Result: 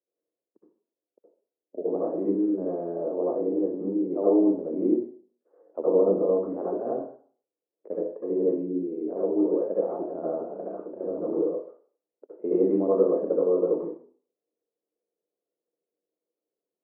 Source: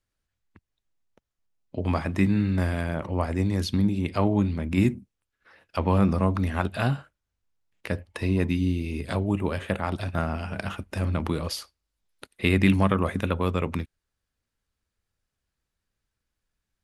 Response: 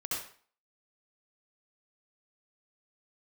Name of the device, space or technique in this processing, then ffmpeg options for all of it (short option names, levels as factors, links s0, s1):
next room: -filter_complex "[0:a]lowpass=f=500:w=0.5412,lowpass=f=500:w=1.3066[s0];[1:a]atrim=start_sample=2205[s1];[s0][s1]afir=irnorm=-1:irlink=0,highpass=f=390:w=0.5412,highpass=f=390:w=1.3066,volume=2.66"